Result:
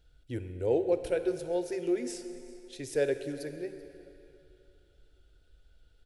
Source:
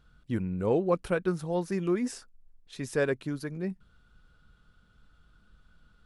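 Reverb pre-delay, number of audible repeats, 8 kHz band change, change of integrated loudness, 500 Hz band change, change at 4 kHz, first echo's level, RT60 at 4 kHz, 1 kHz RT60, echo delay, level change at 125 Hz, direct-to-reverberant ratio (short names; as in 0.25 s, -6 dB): 25 ms, 1, 0.0 dB, -2.0 dB, 0.0 dB, -0.5 dB, -21.5 dB, 2.4 s, 3.0 s, 0.384 s, -8.5 dB, 9.0 dB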